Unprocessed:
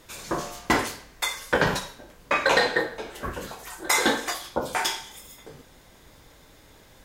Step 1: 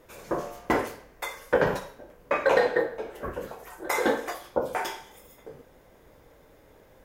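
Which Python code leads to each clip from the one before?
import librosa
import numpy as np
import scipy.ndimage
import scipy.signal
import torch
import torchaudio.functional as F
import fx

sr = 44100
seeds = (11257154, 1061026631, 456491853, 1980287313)

y = fx.graphic_eq(x, sr, hz=(500, 4000, 8000), db=(8, -8, -7))
y = y * librosa.db_to_amplitude(-4.5)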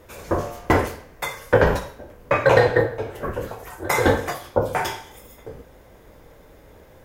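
y = fx.octave_divider(x, sr, octaves=2, level_db=1.0)
y = y * librosa.db_to_amplitude(6.0)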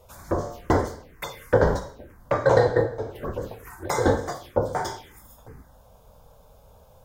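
y = fx.env_phaser(x, sr, low_hz=270.0, high_hz=2600.0, full_db=-23.5)
y = y * librosa.db_to_amplitude(-2.0)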